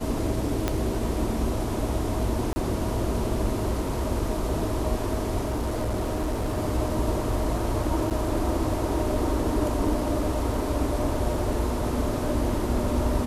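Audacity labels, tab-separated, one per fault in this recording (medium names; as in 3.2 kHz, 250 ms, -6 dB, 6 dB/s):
0.680000	0.680000	pop -10 dBFS
2.530000	2.560000	dropout 30 ms
5.410000	6.590000	clipped -23 dBFS
8.100000	8.110000	dropout 7.5 ms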